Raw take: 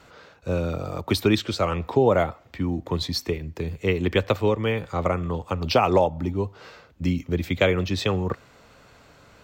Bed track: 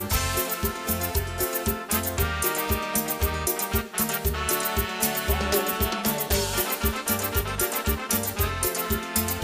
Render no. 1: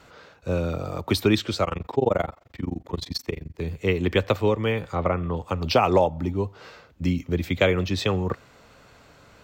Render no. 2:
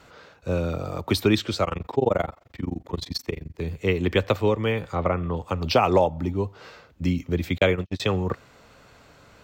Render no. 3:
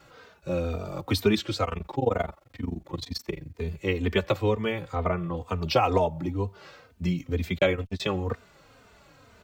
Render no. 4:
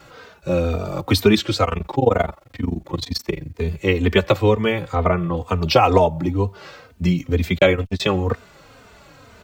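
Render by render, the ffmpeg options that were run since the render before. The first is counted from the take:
-filter_complex "[0:a]asettb=1/sr,asplit=3[s0][s1][s2];[s0]atrim=end=1.644[s3];[s1]atrim=start=1.64:end=3.61,asetpts=PTS-STARTPTS,afade=t=in:d=0.004:c=qsin,afade=t=out:st=1.966:d=0.004:c=qsin,tremolo=f=23:d=0.974[s4];[s2]atrim=start=3.606[s5];[s3][s4]acrossfade=d=0.004:c1=hsin:c2=qsin[s6];[s6][s5]acrossfade=d=0.004:c1=qsin:c2=hsin,asettb=1/sr,asplit=3[s7][s8][s9];[s7]atrim=end=4.954[s10];[s8]atrim=start=4.95:end=5.37,asetpts=PTS-STARTPTS,afade=t=in:d=0.004:c=qsin,afade=t=out:st=0.416:d=0.004:c=qsin,lowpass=3300[s11];[s9]atrim=start=5.366[s12];[s10][s11]acrossfade=d=0.004:c1=hsin:c2=qsin[s13];[s13][s12]acrossfade=d=0.004:c1=qsin:c2=hsin"
-filter_complex "[0:a]asettb=1/sr,asplit=3[s0][s1][s2];[s0]atrim=end=7.584[s3];[s1]atrim=start=7.58:end=8,asetpts=PTS-STARTPTS,afade=t=in:d=0.004:c=qsin,afade=t=out:st=0.416:d=0.004:c=qsin,agate=range=0.00251:threshold=0.0631:ratio=16:release=100:detection=peak[s4];[s2]atrim=start=7.996[s5];[s3][s4]acrossfade=d=0.004:c1=hsin:c2=qsin[s6];[s6][s5]acrossfade=d=0.004:c1=qsin:c2=hsin"
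-filter_complex "[0:a]acrusher=bits=11:mix=0:aa=0.000001,asplit=2[s0][s1];[s1]adelay=3.1,afreqshift=-2.1[s2];[s0][s2]amix=inputs=2:normalize=1"
-af "volume=2.66,alimiter=limit=0.794:level=0:latency=1"

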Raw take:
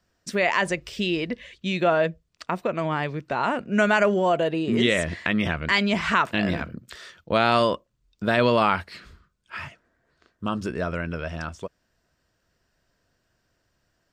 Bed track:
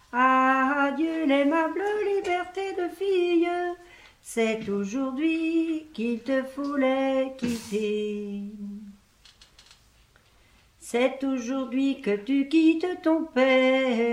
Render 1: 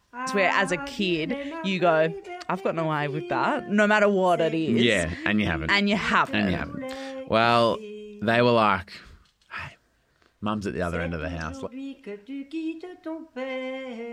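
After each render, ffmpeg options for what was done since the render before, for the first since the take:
-filter_complex "[1:a]volume=0.266[s0];[0:a][s0]amix=inputs=2:normalize=0"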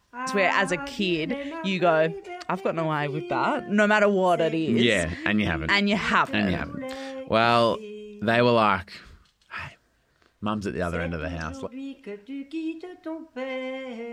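-filter_complex "[0:a]asettb=1/sr,asplit=3[s0][s1][s2];[s0]atrim=end=3.054[s3];[s1]atrim=start=3.05:end=3.55,asetpts=PTS-STARTPTS,afade=t=in:d=0.004:c=qsin,afade=t=out:st=0.496:d=0.004:c=qsin,asuperstop=centerf=1700:order=12:qfactor=5[s4];[s2]atrim=start=3.546[s5];[s3][s4]acrossfade=d=0.004:c1=hsin:c2=qsin[s6];[s6][s5]acrossfade=d=0.004:c1=qsin:c2=hsin"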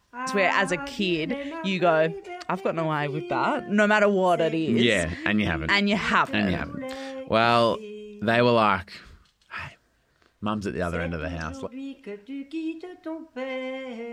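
-af anull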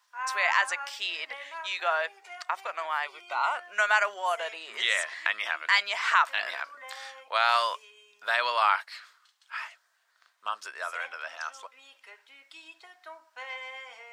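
-af "highpass=f=860:w=0.5412,highpass=f=860:w=1.3066,equalizer=f=2700:t=o:w=0.47:g=-3"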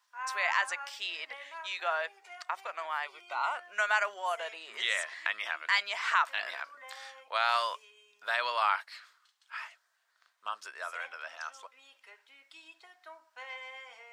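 -af "volume=0.596"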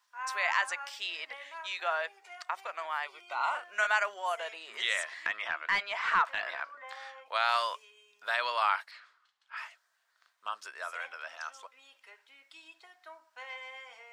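-filter_complex "[0:a]asettb=1/sr,asplit=3[s0][s1][s2];[s0]atrim=end=3.354[s3];[s1]atrim=start=3.35:end=3.87,asetpts=PTS-STARTPTS,afade=t=in:d=0.004:c=qsin,afade=t=out:st=0.516:d=0.004:c=qsin,asplit=2[s4][s5];[s5]adelay=42,volume=0.501[s6];[s4][s6]amix=inputs=2:normalize=0,atrim=end_sample=22932[s7];[s2]atrim=start=3.866[s8];[s3][s7]acrossfade=d=0.004:c1=hsin:c2=qsin[s9];[s9][s8]acrossfade=d=0.004:c1=qsin:c2=hsin,asettb=1/sr,asplit=3[s10][s11][s12];[s10]atrim=end=5.264[s13];[s11]atrim=start=5.26:end=7.26,asetpts=PTS-STARTPTS,afade=t=in:d=0.004:c=qsin,afade=t=out:st=1.996:d=0.004:c=qsin,asplit=2[s14][s15];[s15]highpass=f=720:p=1,volume=3.98,asoftclip=type=tanh:threshold=0.266[s16];[s14][s16]amix=inputs=2:normalize=0,lowpass=f=1100:p=1,volume=0.501[s17];[s12]atrim=start=7.256[s18];[s13][s17]acrossfade=d=0.004:c1=hsin:c2=qsin[s19];[s19][s18]acrossfade=d=0.004:c1=qsin:c2=hsin,asettb=1/sr,asplit=3[s20][s21][s22];[s20]atrim=end=8.914[s23];[s21]atrim=start=8.91:end=9.57,asetpts=PTS-STARTPTS,afade=t=in:d=0.004:c=qsin,afade=t=out:st=0.656:d=0.004:c=qsin,aemphasis=mode=reproduction:type=75fm[s24];[s22]atrim=start=9.566[s25];[s23][s24]acrossfade=d=0.004:c1=hsin:c2=qsin[s26];[s26][s25]acrossfade=d=0.004:c1=qsin:c2=hsin"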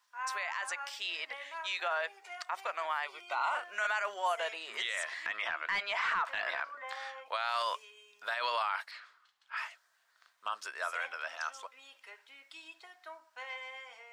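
-af "alimiter=level_in=1.26:limit=0.0631:level=0:latency=1:release=49,volume=0.794,dynaudnorm=f=620:g=5:m=1.41"

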